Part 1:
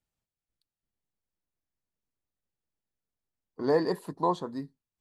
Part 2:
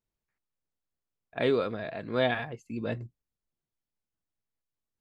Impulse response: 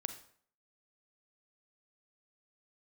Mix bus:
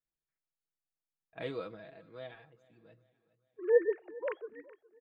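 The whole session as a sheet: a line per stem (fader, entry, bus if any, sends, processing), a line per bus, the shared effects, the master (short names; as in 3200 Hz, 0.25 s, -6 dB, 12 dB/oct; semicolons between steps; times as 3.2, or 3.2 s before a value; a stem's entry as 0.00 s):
-0.5 dB, 0.00 s, send -22.5 dB, echo send -21.5 dB, sine-wave speech; fixed phaser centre 1000 Hz, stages 6
1.69 s -14 dB -> 2.08 s -23 dB, 0.00 s, send -15 dB, echo send -23 dB, comb 6.2 ms, depth 63%; auto duck -18 dB, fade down 1.35 s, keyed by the first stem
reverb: on, RT60 0.55 s, pre-delay 33 ms
echo: feedback echo 0.414 s, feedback 47%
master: dry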